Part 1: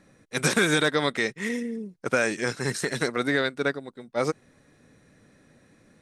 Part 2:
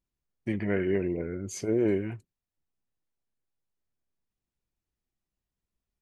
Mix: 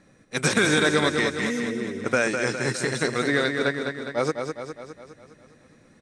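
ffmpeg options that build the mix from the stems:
-filter_complex "[0:a]lowpass=f=9700:w=0.5412,lowpass=f=9700:w=1.3066,volume=1.12,asplit=2[s0][s1];[s1]volume=0.501[s2];[1:a]alimiter=limit=0.0944:level=0:latency=1,volume=0.501[s3];[s2]aecho=0:1:205|410|615|820|1025|1230|1435|1640:1|0.56|0.314|0.176|0.0983|0.0551|0.0308|0.0173[s4];[s0][s3][s4]amix=inputs=3:normalize=0"

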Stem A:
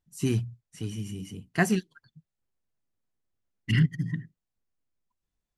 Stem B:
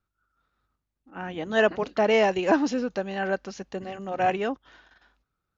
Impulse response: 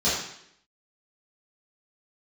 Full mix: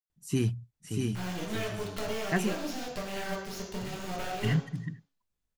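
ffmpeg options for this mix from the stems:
-filter_complex "[0:a]adelay=100,volume=0.841,asplit=2[s0][s1];[s1]volume=0.631[s2];[1:a]highshelf=f=5100:g=10,acompressor=threshold=0.0355:ratio=8,acrusher=bits=4:dc=4:mix=0:aa=0.000001,volume=0.891,asplit=3[s3][s4][s5];[s4]volume=0.211[s6];[s5]apad=whole_len=250315[s7];[s0][s7]sidechaincompress=threshold=0.001:ratio=8:attack=16:release=233[s8];[2:a]atrim=start_sample=2205[s9];[s6][s9]afir=irnorm=-1:irlink=0[s10];[s2]aecho=0:1:639:1[s11];[s8][s3][s10][s11]amix=inputs=4:normalize=0"

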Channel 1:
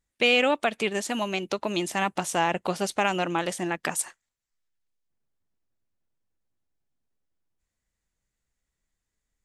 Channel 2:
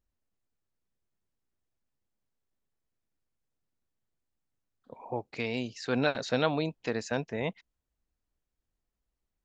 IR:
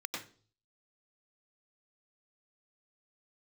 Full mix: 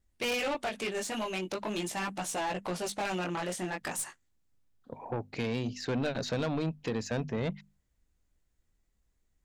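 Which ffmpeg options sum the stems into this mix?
-filter_complex "[0:a]flanger=delay=15:depth=7.6:speed=0.43,asoftclip=type=tanh:threshold=0.0473,volume=1.12[s0];[1:a]lowshelf=f=310:g=10,acompressor=threshold=0.0631:ratio=6,volume=1.19[s1];[s0][s1]amix=inputs=2:normalize=0,bandreject=f=50:t=h:w=6,bandreject=f=100:t=h:w=6,bandreject=f=150:t=h:w=6,bandreject=f=200:t=h:w=6,bandreject=f=250:t=h:w=6,aeval=exprs='(tanh(20*val(0)+0.2)-tanh(0.2))/20':c=same"

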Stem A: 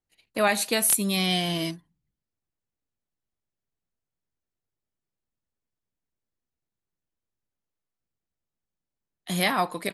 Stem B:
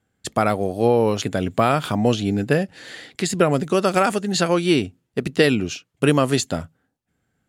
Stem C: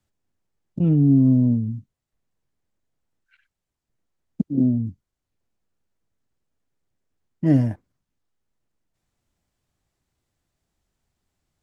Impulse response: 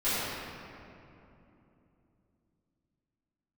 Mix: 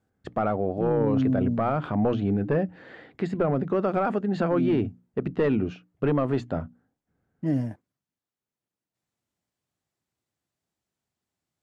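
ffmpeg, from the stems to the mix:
-filter_complex "[1:a]aeval=exprs='clip(val(0),-1,0.266)':c=same,lowpass=1300,bandreject=f=60:t=h:w=6,bandreject=f=120:t=h:w=6,bandreject=f=180:t=h:w=6,bandreject=f=240:t=h:w=6,bandreject=f=300:t=h:w=6,volume=0.841[s0];[2:a]highpass=120,volume=0.473[s1];[s0][s1]amix=inputs=2:normalize=0,alimiter=limit=0.158:level=0:latency=1:release=14"

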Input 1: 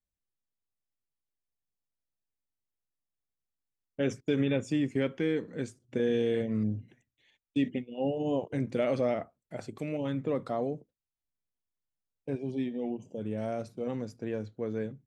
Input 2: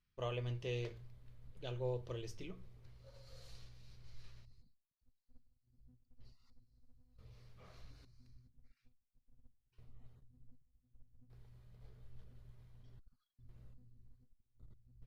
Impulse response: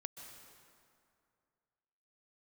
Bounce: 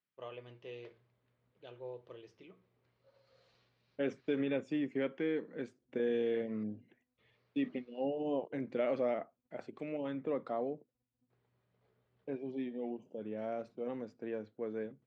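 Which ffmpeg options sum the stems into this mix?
-filter_complex "[0:a]volume=0.631[s0];[1:a]volume=0.596[s1];[s0][s1]amix=inputs=2:normalize=0,highpass=250,lowpass=2900"

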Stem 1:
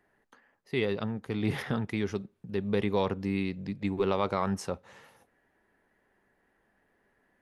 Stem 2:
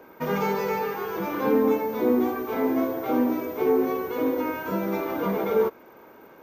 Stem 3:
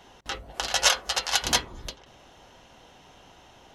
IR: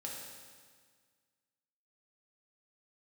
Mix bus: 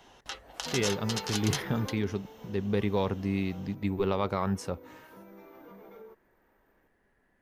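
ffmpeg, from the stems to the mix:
-filter_complex "[0:a]lowshelf=f=100:g=10,volume=0.841[s0];[1:a]acompressor=threshold=0.0562:ratio=6,adelay=450,volume=0.251,afade=t=out:st=1.85:d=0.31:silence=0.334965[s1];[2:a]acrossover=split=470|3300[s2][s3][s4];[s2]acompressor=threshold=0.00224:ratio=4[s5];[s3]acompressor=threshold=0.0178:ratio=4[s6];[s4]acompressor=threshold=0.0355:ratio=4[s7];[s5][s6][s7]amix=inputs=3:normalize=0,volume=0.631[s8];[s0][s1][s8]amix=inputs=3:normalize=0"

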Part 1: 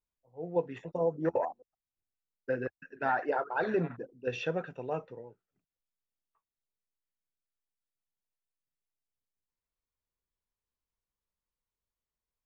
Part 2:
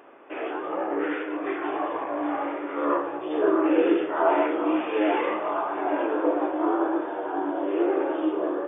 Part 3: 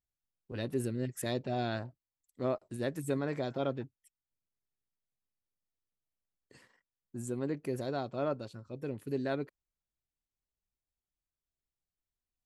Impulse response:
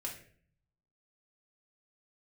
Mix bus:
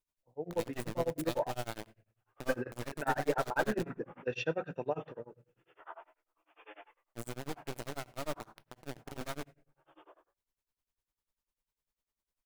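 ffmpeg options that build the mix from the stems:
-filter_complex "[0:a]bandreject=f=60:t=h:w=6,bandreject=f=120:t=h:w=6,bandreject=f=180:t=h:w=6,acompressor=threshold=0.0355:ratio=6,volume=1.33,asplit=2[s0][s1];[s1]volume=0.422[s2];[1:a]highpass=910,aeval=exprs='val(0)*pow(10,-34*(0.5-0.5*cos(2*PI*1.2*n/s))/20)':c=same,adelay=1700,volume=0.168[s3];[2:a]bandreject=f=133.5:t=h:w=4,bandreject=f=267:t=h:w=4,bandreject=f=400.5:t=h:w=4,bandreject=f=534:t=h:w=4,bandreject=f=667.5:t=h:w=4,bandreject=f=801:t=h:w=4,bandreject=f=934.5:t=h:w=4,acrusher=bits=3:dc=4:mix=0:aa=0.000001,volume=0.794,asplit=2[s4][s5];[s5]volume=0.282[s6];[3:a]atrim=start_sample=2205[s7];[s2][s6]amix=inputs=2:normalize=0[s8];[s8][s7]afir=irnorm=-1:irlink=0[s9];[s0][s3][s4][s9]amix=inputs=4:normalize=0,tremolo=f=10:d=0.98"

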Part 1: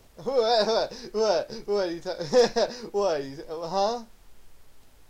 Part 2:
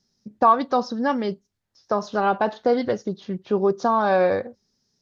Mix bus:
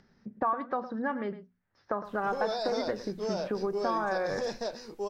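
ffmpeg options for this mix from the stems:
-filter_complex "[0:a]alimiter=limit=0.126:level=0:latency=1:release=60,adelay=2050,volume=0.447[s0];[1:a]bandreject=f=60:t=h:w=6,bandreject=f=120:t=h:w=6,bandreject=f=180:t=h:w=6,bandreject=f=240:t=h:w=6,acompressor=threshold=0.0316:ratio=3,lowpass=f=1800:t=q:w=1.9,volume=0.75,asplit=2[s1][s2];[s2]volume=0.2,aecho=0:1:109:1[s3];[s0][s1][s3]amix=inputs=3:normalize=0,acompressor=mode=upward:threshold=0.00251:ratio=2.5"

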